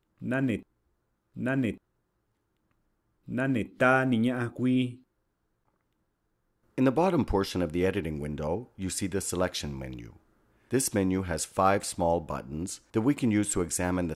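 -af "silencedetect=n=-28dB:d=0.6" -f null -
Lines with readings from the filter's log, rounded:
silence_start: 0.56
silence_end: 1.41 | silence_duration: 0.84
silence_start: 1.71
silence_end: 3.32 | silence_duration: 1.61
silence_start: 4.86
silence_end: 6.78 | silence_duration: 1.91
silence_start: 9.85
silence_end: 10.73 | silence_duration: 0.88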